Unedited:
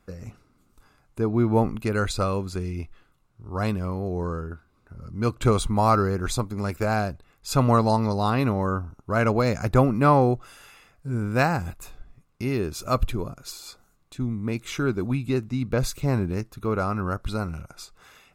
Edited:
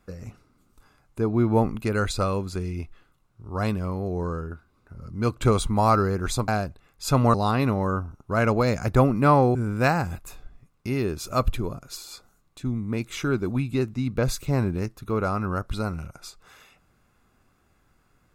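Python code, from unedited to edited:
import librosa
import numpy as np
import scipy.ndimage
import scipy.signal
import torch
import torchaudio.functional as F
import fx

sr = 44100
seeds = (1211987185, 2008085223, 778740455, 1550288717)

y = fx.edit(x, sr, fx.cut(start_s=6.48, length_s=0.44),
    fx.cut(start_s=7.78, length_s=0.35),
    fx.cut(start_s=10.34, length_s=0.76), tone=tone)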